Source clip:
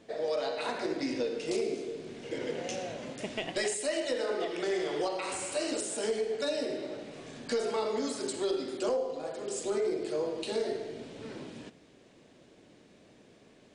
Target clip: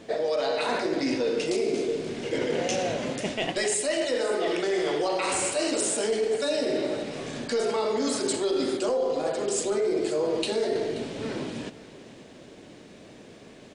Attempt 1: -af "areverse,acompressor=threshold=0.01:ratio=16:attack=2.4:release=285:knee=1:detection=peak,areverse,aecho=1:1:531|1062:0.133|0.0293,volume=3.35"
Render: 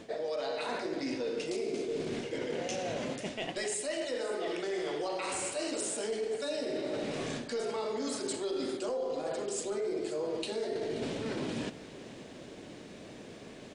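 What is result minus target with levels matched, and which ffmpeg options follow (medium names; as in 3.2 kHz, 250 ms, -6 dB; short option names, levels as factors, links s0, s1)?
compression: peak gain reduction +8.5 dB
-af "areverse,acompressor=threshold=0.0282:ratio=16:attack=2.4:release=285:knee=1:detection=peak,areverse,aecho=1:1:531|1062:0.133|0.0293,volume=3.35"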